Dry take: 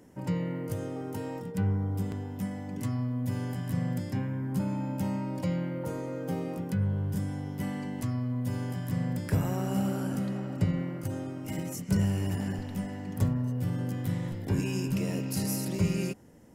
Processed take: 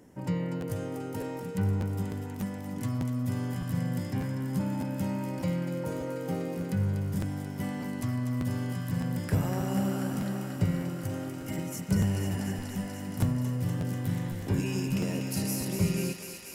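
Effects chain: thinning echo 243 ms, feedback 85%, high-pass 610 Hz, level -7 dB; crackling interface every 0.60 s, samples 512, repeat, from 0.60 s

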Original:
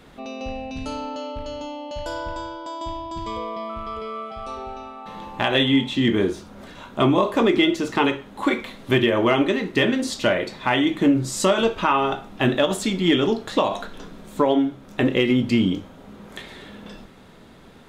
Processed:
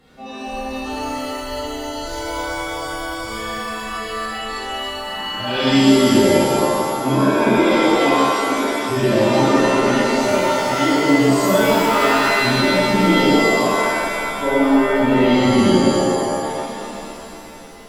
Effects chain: harmonic-percussive separation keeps harmonic; pitch-shifted reverb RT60 2.3 s, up +7 st, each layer -2 dB, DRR -9.5 dB; trim -5 dB

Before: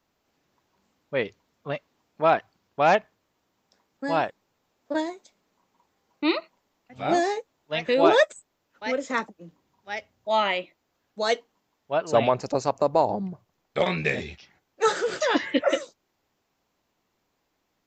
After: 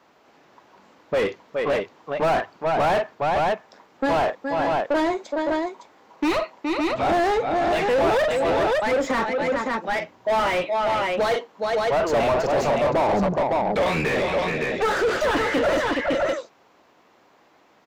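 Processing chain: multi-tap echo 41/49/418/560 ms -18.5/-18/-13.5/-10 dB; overdrive pedal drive 37 dB, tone 1 kHz, clips at -5 dBFS; trim -6.5 dB

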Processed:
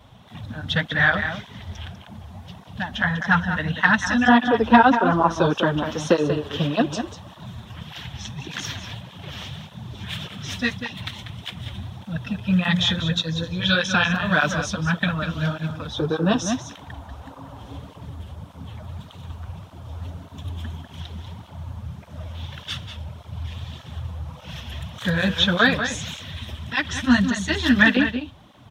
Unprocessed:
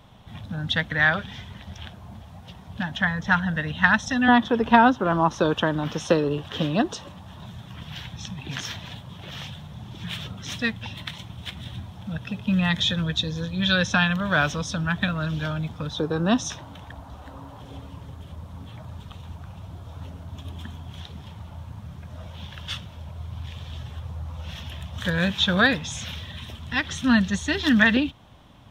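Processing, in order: echo from a far wall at 33 m, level -8 dB; cancelling through-zero flanger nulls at 1.7 Hz, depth 7.6 ms; trim +4.5 dB

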